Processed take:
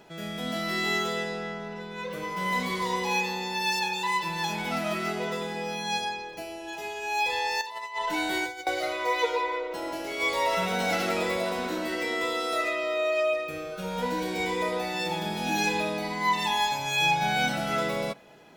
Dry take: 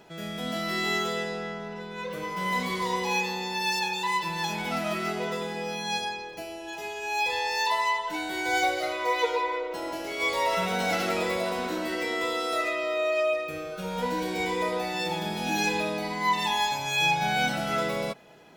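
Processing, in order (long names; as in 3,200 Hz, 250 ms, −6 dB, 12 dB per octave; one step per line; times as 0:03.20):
0:07.61–0:08.67: compressor whose output falls as the input rises −31 dBFS, ratio −0.5
on a send: convolution reverb RT60 0.65 s, pre-delay 3 ms, DRR 21 dB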